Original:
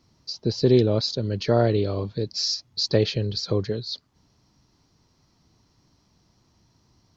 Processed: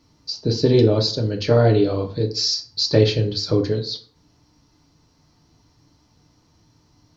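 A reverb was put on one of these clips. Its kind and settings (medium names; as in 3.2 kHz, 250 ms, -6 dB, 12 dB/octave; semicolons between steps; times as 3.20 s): FDN reverb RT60 0.46 s, low-frequency decay 1×, high-frequency decay 0.65×, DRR 2.5 dB; trim +2.5 dB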